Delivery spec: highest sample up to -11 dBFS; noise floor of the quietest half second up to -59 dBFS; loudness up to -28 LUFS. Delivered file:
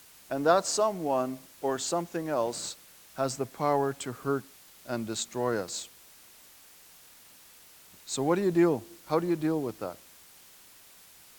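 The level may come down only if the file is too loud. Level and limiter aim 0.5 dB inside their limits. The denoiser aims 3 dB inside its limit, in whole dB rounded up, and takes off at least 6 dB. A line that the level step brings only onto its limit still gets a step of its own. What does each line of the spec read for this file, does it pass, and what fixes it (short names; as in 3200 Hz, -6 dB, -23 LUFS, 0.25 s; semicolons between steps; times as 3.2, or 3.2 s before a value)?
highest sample -9.5 dBFS: fail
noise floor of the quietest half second -55 dBFS: fail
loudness -30.0 LUFS: OK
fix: denoiser 7 dB, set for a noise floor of -55 dBFS; limiter -11.5 dBFS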